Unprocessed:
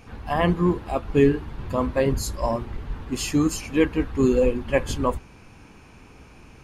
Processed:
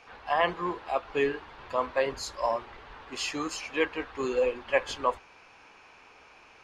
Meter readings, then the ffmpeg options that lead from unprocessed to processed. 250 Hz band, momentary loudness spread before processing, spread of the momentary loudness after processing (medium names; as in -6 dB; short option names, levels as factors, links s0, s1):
-15.0 dB, 10 LU, 8 LU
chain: -filter_complex "[0:a]acrossover=split=490 6100:gain=0.0708 1 0.0891[s0][s1][s2];[s0][s1][s2]amix=inputs=3:normalize=0"